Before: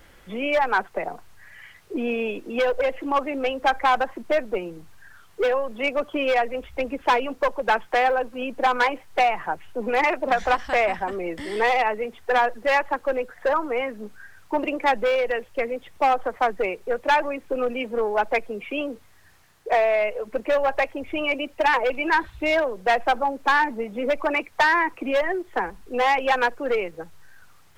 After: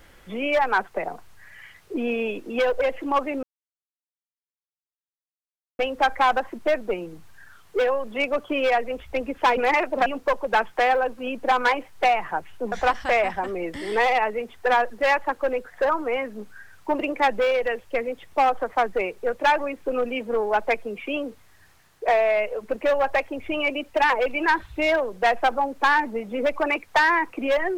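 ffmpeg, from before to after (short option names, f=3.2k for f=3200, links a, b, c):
-filter_complex "[0:a]asplit=5[a][b][c][d][e];[a]atrim=end=3.43,asetpts=PTS-STARTPTS,afade=t=out:st=3.426:d=0.004:c=hsin,apad=pad_dur=2.36[f];[b]atrim=start=3.43:end=7.212,asetpts=PTS-STARTPTS,afade=t=in:d=0.004:c=hsin[g];[c]atrim=start=9.868:end=10.362[h];[d]atrim=start=7.208:end=9.872[i];[e]atrim=start=10.358[j];[f][g]concat=n=2:v=0:a=1[k];[k][h]acrossfade=d=0.004:c1=hsin:c2=hsin[l];[l][i]acrossfade=d=0.004:c1=hsin:c2=hsin[m];[m][j]acrossfade=d=0.004:c1=hsin:c2=hsin"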